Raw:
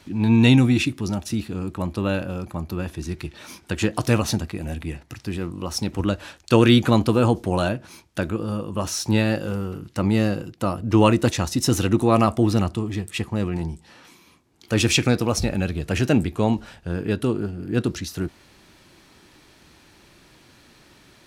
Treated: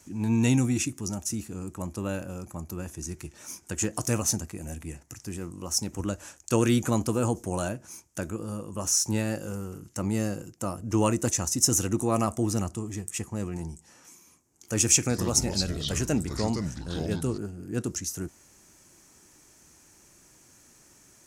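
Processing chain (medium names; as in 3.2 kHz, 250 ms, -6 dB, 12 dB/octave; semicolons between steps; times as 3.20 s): resonant high shelf 5.1 kHz +9.5 dB, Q 3; 15.00–17.38 s: ever faster or slower copies 96 ms, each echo -5 st, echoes 2, each echo -6 dB; trim -8 dB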